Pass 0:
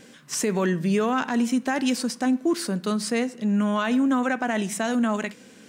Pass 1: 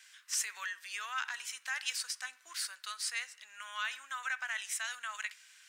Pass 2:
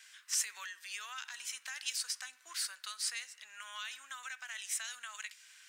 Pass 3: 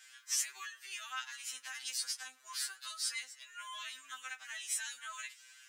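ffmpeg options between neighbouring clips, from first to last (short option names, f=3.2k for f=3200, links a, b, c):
-af "highpass=f=1.4k:w=0.5412,highpass=f=1.4k:w=1.3066,volume=-4.5dB"
-filter_complex "[0:a]acrossover=split=320|3000[a][b][c];[b]acompressor=threshold=-47dB:ratio=6[d];[a][d][c]amix=inputs=3:normalize=0,volume=1dB"
-af "afftfilt=real='re*2.45*eq(mod(b,6),0)':imag='im*2.45*eq(mod(b,6),0)':win_size=2048:overlap=0.75,volume=2dB"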